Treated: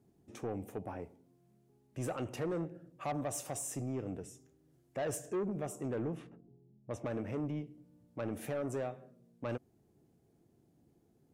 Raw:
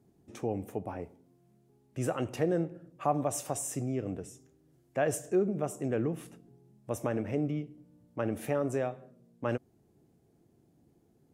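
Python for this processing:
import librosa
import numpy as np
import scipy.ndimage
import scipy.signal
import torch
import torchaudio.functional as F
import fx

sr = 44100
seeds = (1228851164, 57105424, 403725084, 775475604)

y = fx.env_lowpass(x, sr, base_hz=410.0, full_db=-27.0, at=(6.03, 7.22), fade=0.02)
y = 10.0 ** (-27.5 / 20.0) * np.tanh(y / 10.0 ** (-27.5 / 20.0))
y = y * 10.0 ** (-3.0 / 20.0)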